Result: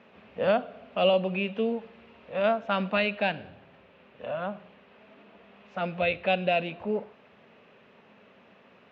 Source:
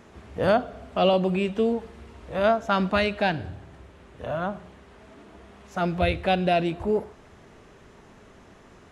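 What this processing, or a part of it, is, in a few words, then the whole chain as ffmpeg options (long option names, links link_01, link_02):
kitchen radio: -af "highpass=190,equalizer=frequency=210:width_type=q:width=4:gain=5,equalizer=frequency=330:width_type=q:width=4:gain=-8,equalizer=frequency=540:width_type=q:width=4:gain=6,equalizer=frequency=2600:width_type=q:width=4:gain=8,lowpass=frequency=3700:width=0.5412,lowpass=frequency=3700:width=1.3066,highshelf=frequency=6000:gain=8,volume=-5.5dB"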